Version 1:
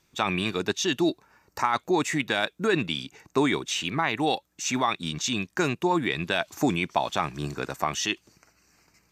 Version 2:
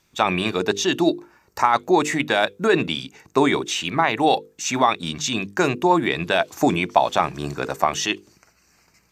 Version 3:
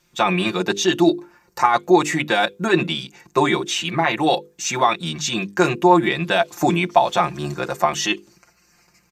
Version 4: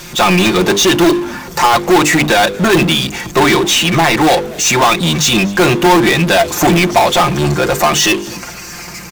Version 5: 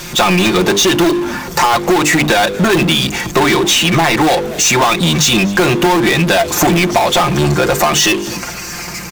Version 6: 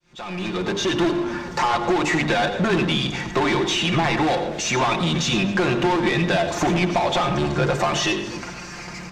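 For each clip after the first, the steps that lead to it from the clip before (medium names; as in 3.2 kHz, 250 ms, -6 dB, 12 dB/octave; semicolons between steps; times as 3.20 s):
hum notches 50/100/150/200/250/300/350/400/450/500 Hz; dynamic bell 630 Hz, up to +6 dB, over -39 dBFS, Q 0.8; trim +3.5 dB
comb 5.7 ms, depth 87%; trim -1 dB
in parallel at -5 dB: integer overflow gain 13 dB; on the sum: power-law waveshaper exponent 0.5; frequency-shifting echo 241 ms, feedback 47%, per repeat -92 Hz, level -21.5 dB
compression, threshold -13 dBFS, peak gain reduction 8 dB; trim +3.5 dB
fade-in on the opening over 1.03 s; distance through air 100 m; reverberation RT60 0.50 s, pre-delay 84 ms, DRR 8.5 dB; trim -8.5 dB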